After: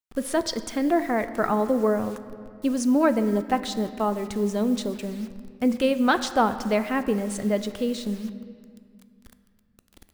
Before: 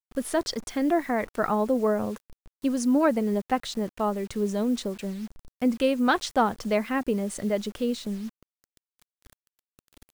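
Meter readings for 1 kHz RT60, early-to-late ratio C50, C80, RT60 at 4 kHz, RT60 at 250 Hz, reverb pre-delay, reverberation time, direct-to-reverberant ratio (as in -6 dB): 2.3 s, 12.5 dB, 13.0 dB, 1.6 s, 3.6 s, 9 ms, 2.3 s, 11.0 dB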